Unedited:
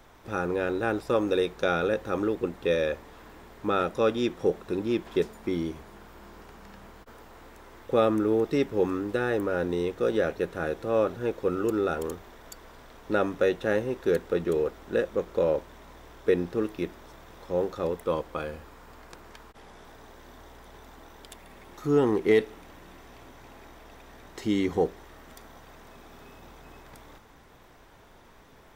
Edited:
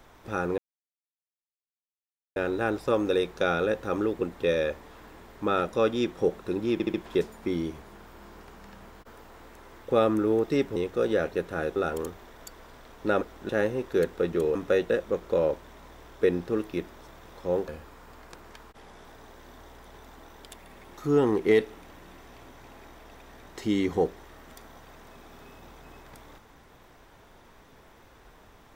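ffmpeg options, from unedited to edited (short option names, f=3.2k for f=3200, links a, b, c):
-filter_complex "[0:a]asplit=12[a][b][c][d][e][f][g][h][i][j][k][l];[a]atrim=end=0.58,asetpts=PTS-STARTPTS,afade=t=out:st=0.576:d=0.004:c=hsin,apad=pad_dur=1.78[m];[b]atrim=start=0.58:end=5.022,asetpts=PTS-STARTPTS,afade=t=in:d=0.004:c=hsin[n];[c]atrim=start=4.948:end=5.022[o];[d]atrim=start=4.948:end=5.022[p];[e]atrim=start=4.948:end=8.772[q];[f]atrim=start=9.798:end=10.802[r];[g]atrim=start=11.808:end=13.262[s];[h]atrim=start=14.668:end=14.952[t];[i]atrim=start=13.608:end=14.672[u];[j]atrim=start=13.258:end=13.612[v];[k]atrim=start=14.948:end=17.732[w];[l]atrim=start=18.478[x];[m][n]concat=n=2:v=0:a=1[y];[y][o]acrossfade=d=0.004:c1=hsin:c2=hsin[z];[z][p]acrossfade=d=0.004:c1=hsin:c2=hsin[aa];[aa][q]acrossfade=d=0.004:c1=hsin:c2=hsin[ab];[ab][r]acrossfade=d=0.004:c1=hsin:c2=hsin[ac];[ac][s]acrossfade=d=0.004:c1=hsin:c2=hsin[ad];[ad][t]acrossfade=d=0.004:c1=hsin:c2=hsin[ae];[ae][u]acrossfade=d=0.004:c1=hsin:c2=hsin[af];[af][v]acrossfade=d=0.004:c1=hsin:c2=hsin[ag];[ag][w]acrossfade=d=0.004:c1=hsin:c2=hsin[ah];[ah][x]acrossfade=d=0.004:c1=hsin:c2=hsin"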